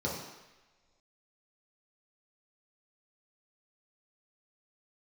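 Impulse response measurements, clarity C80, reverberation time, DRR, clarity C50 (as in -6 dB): 5.5 dB, no single decay rate, -5.5 dB, 2.5 dB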